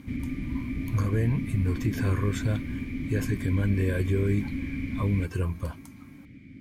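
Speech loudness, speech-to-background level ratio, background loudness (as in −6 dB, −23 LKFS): −29.0 LKFS, 4.5 dB, −33.5 LKFS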